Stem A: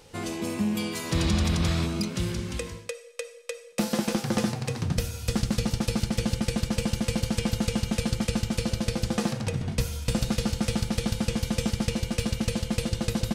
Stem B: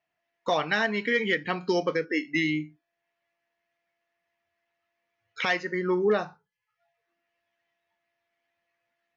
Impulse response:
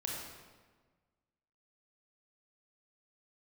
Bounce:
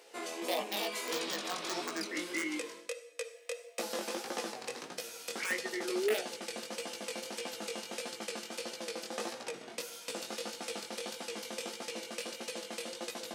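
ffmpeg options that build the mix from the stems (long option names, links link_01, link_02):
-filter_complex "[0:a]acompressor=threshold=-29dB:ratio=1.5,volume=-1dB[link_01];[1:a]acompressor=mode=upward:threshold=-37dB:ratio=2.5,aeval=exprs='(mod(5.96*val(0)+1,2)-1)/5.96':channel_layout=same,asplit=2[link_02][link_03];[link_03]afreqshift=0.33[link_04];[link_02][link_04]amix=inputs=2:normalize=1,volume=-5dB,asplit=2[link_05][link_06];[link_06]volume=-22.5dB[link_07];[2:a]atrim=start_sample=2205[link_08];[link_07][link_08]afir=irnorm=-1:irlink=0[link_09];[link_01][link_05][link_09]amix=inputs=3:normalize=0,highpass=frequency=340:width=0.5412,highpass=frequency=340:width=1.3066,flanger=delay=16:depth=6.8:speed=1.6"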